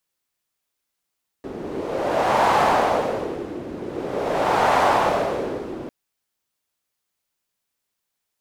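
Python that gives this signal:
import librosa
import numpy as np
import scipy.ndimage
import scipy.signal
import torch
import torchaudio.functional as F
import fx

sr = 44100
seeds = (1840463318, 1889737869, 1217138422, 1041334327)

y = fx.wind(sr, seeds[0], length_s=4.45, low_hz=330.0, high_hz=840.0, q=2.2, gusts=2, swing_db=15.0)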